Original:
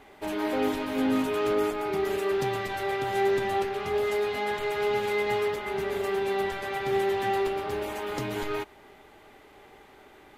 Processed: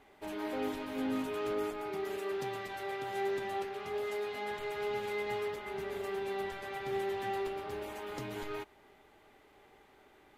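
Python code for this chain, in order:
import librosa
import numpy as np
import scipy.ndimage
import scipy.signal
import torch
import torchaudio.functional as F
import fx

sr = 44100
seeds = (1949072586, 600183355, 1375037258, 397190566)

y = fx.low_shelf(x, sr, hz=97.0, db=-10.5, at=(1.89, 4.42))
y = y * 10.0 ** (-9.0 / 20.0)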